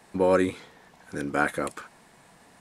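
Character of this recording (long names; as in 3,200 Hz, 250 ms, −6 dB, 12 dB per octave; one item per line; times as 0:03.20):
background noise floor −57 dBFS
spectral slope −2.0 dB per octave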